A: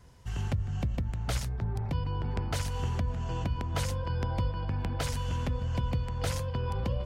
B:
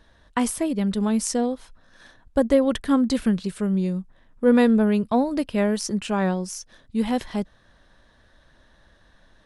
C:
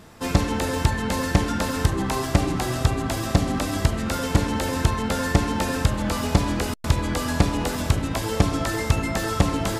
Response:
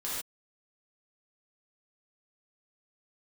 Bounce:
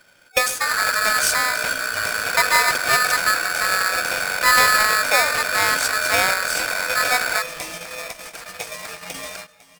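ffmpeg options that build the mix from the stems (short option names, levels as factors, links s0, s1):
-filter_complex "[0:a]lowpass=1200,aeval=exprs='0.0944*(cos(1*acos(clip(val(0)/0.0944,-1,1)))-cos(1*PI/2))+0.0335*(cos(8*acos(clip(val(0)/0.0944,-1,1)))-cos(8*PI/2))':c=same,adelay=350,volume=1.12[s0];[1:a]volume=0.944,asplit=3[s1][s2][s3];[s2]volume=0.119[s4];[2:a]alimiter=limit=0.2:level=0:latency=1:release=64,highpass=f=340:p=1,adelay=450,volume=0.501[s5];[s3]apad=whole_len=451856[s6];[s5][s6]sidechaingate=range=0.1:threshold=0.00158:ratio=16:detection=peak[s7];[3:a]atrim=start_sample=2205[s8];[s4][s8]afir=irnorm=-1:irlink=0[s9];[s0][s1][s7][s9]amix=inputs=4:normalize=0,superequalizer=9b=2.82:15b=3.16,aeval=exprs='val(0)*sgn(sin(2*PI*1500*n/s))':c=same"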